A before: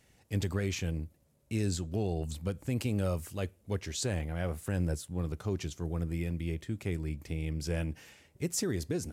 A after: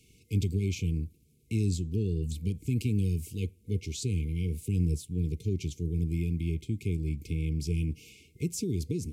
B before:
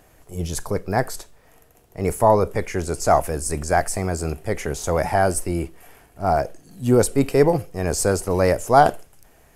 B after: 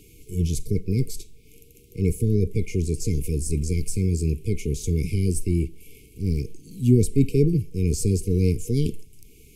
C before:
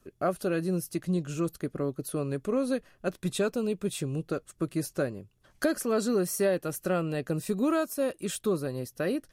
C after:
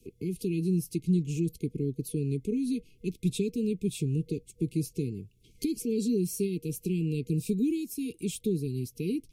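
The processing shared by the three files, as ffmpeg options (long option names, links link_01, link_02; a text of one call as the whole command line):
ffmpeg -i in.wav -filter_complex "[0:a]afftfilt=real='re*(1-between(b*sr/4096,480,2100))':imag='im*(1-between(b*sr/4096,480,2100))':win_size=4096:overlap=0.75,acrossover=split=240[link_01][link_02];[link_02]acompressor=threshold=-55dB:ratio=1.5[link_03];[link_01][link_03]amix=inputs=2:normalize=0,volume=5dB" out.wav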